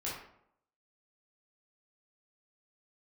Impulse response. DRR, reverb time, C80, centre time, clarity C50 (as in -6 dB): -7.0 dB, 0.70 s, 6.0 dB, 50 ms, 2.0 dB